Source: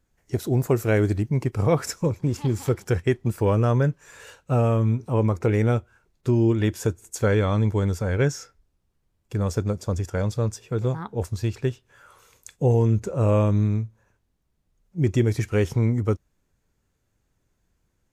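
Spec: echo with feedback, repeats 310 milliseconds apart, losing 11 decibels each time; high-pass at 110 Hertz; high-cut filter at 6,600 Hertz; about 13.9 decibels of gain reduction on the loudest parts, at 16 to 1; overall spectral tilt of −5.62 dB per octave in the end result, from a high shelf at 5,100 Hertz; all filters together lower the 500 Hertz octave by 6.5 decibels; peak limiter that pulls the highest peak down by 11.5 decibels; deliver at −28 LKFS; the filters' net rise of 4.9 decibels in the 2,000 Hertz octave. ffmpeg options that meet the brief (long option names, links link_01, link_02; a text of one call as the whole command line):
ffmpeg -i in.wav -af "highpass=110,lowpass=6600,equalizer=frequency=500:width_type=o:gain=-8.5,equalizer=frequency=2000:width_type=o:gain=6.5,highshelf=frequency=5100:gain=3,acompressor=threshold=-32dB:ratio=16,alimiter=level_in=5.5dB:limit=-24dB:level=0:latency=1,volume=-5.5dB,aecho=1:1:310|620|930:0.282|0.0789|0.0221,volume=13dB" out.wav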